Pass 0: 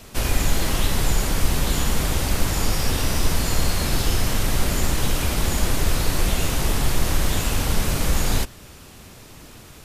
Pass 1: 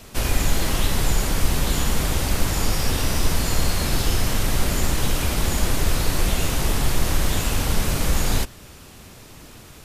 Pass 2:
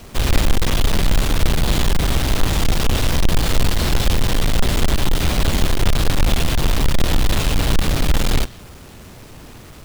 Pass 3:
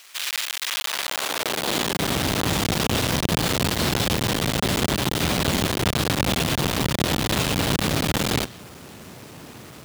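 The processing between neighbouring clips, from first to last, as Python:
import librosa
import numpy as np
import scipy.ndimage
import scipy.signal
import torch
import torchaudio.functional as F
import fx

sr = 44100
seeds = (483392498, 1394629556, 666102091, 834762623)

y1 = x
y2 = fx.halfwave_hold(y1, sr)
y2 = fx.dynamic_eq(y2, sr, hz=3500.0, q=1.5, threshold_db=-44.0, ratio=4.0, max_db=6)
y2 = y2 * 10.0 ** (-1.0 / 20.0)
y3 = fx.filter_sweep_highpass(y2, sr, from_hz=1900.0, to_hz=130.0, start_s=0.6, end_s=2.26, q=0.81)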